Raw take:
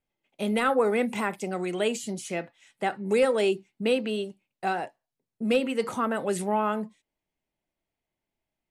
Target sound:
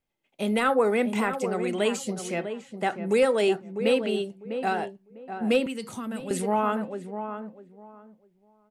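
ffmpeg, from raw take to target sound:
-filter_complex "[0:a]asplit=2[a][b];[b]adelay=650,lowpass=f=1.3k:p=1,volume=-8dB,asplit=2[c][d];[d]adelay=650,lowpass=f=1.3k:p=1,volume=0.22,asplit=2[e][f];[f]adelay=650,lowpass=f=1.3k:p=1,volume=0.22[g];[c][e][g]amix=inputs=3:normalize=0[h];[a][h]amix=inputs=2:normalize=0,asettb=1/sr,asplit=3[i][j][k];[i]atrim=end=5.664[l];[j]atrim=start=5.66:end=6.31,asetpts=PTS-STARTPTS,afade=t=in:d=0.004:c=qsin,afade=t=out:st=0.646:d=0.004:c=qsin,acrossover=split=240|3000[m][n][o];[n]acompressor=threshold=-40dB:ratio=6[p];[m][p][o]amix=inputs=3:normalize=0[q];[k]atrim=start=6.306[r];[l][q]acrossfade=d=0.004:c1=hsin:c2=qsin[s];[s][r]acrossfade=d=0.004:c1=qsin:c2=hsin,volume=1dB"

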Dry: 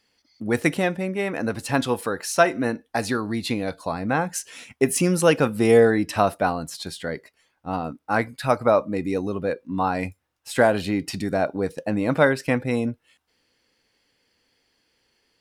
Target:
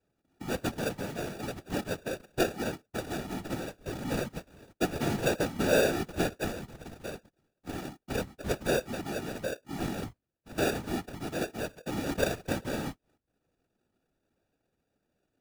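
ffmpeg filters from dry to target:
-filter_complex "[0:a]asettb=1/sr,asplit=3[a][b][c];[a]atrim=end=1.624[d];[b]atrim=start=1.62:end=2.63,asetpts=PTS-STARTPTS,afade=t=in:d=0.004:c=qsin,afade=t=out:st=1.006:d=0.004:c=qsin,lowpass=f=2.6k:w=0.5412,lowpass=f=2.6k:w=1.3066[e];[c]atrim=start=2.626[f];[d][e]acrossfade=d=0.004:c1=hsin:c2=qsin[g];[g][f]acrossfade=d=0.004:c1=qsin:c2=hsin,acrusher=samples=42:mix=1:aa=0.000001,afftfilt=real='hypot(re,im)*cos(2*PI*random(0))':imag='hypot(re,im)*sin(2*PI*random(1))':win_size=512:overlap=0.75,volume=-4dB"

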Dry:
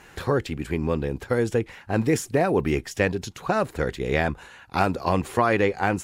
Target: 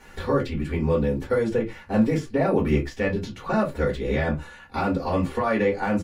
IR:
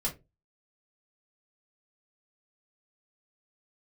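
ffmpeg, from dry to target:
-filter_complex "[0:a]aecho=1:1:3.5:0.32,acrossover=split=4500[a][b];[a]alimiter=limit=-13.5dB:level=0:latency=1:release=72[c];[b]acompressor=threshold=-53dB:ratio=6[d];[c][d]amix=inputs=2:normalize=0[e];[1:a]atrim=start_sample=2205,afade=t=out:st=0.16:d=0.01,atrim=end_sample=7497[f];[e][f]afir=irnorm=-1:irlink=0,volume=-4dB"

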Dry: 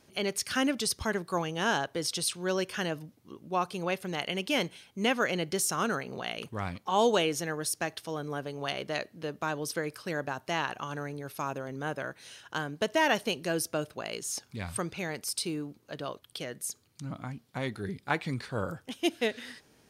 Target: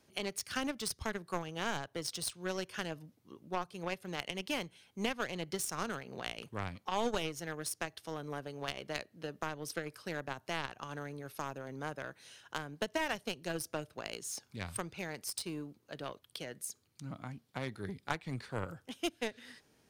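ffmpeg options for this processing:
-filter_complex "[0:a]aeval=exprs='0.266*(cos(1*acos(clip(val(0)/0.266,-1,1)))-cos(1*PI/2))+0.0266*(cos(7*acos(clip(val(0)/0.266,-1,1)))-cos(7*PI/2))':c=same,acrossover=split=140[a][b];[b]acompressor=threshold=-41dB:ratio=2.5[c];[a][c]amix=inputs=2:normalize=0,volume=4dB"

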